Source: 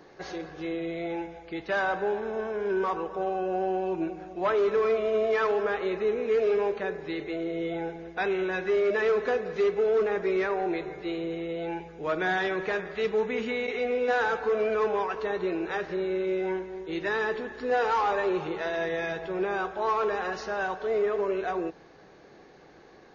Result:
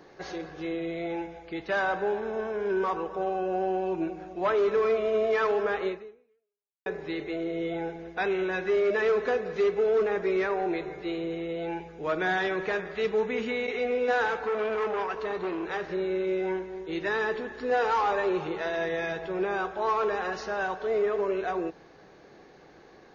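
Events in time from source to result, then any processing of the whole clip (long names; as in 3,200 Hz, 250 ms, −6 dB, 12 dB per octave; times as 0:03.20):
0:05.88–0:06.86: fade out exponential
0:14.26–0:15.85: saturating transformer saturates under 860 Hz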